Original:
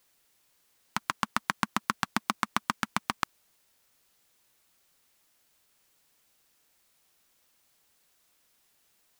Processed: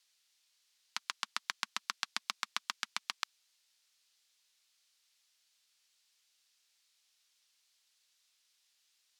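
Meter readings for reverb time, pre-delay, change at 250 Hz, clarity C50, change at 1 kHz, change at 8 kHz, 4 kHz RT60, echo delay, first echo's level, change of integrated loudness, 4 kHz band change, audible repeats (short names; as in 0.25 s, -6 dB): none, none, -26.5 dB, none, -12.5 dB, -3.0 dB, none, none, none, -7.0 dB, -0.5 dB, none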